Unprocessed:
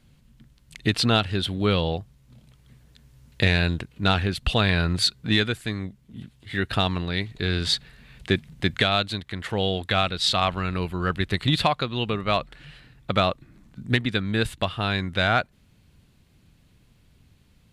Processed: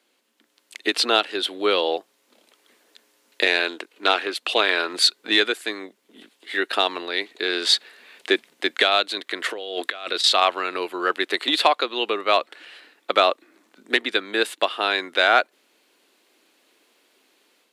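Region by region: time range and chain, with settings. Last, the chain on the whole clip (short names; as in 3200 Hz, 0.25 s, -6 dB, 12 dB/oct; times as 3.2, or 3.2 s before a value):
3.59–4.93 bell 130 Hz -11.5 dB 0.91 oct + Doppler distortion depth 0.23 ms
9.14–10.24 notch 840 Hz, Q 5.9 + negative-ratio compressor -29 dBFS, ratio -0.5
whole clip: steep high-pass 320 Hz 36 dB/oct; AGC gain up to 6 dB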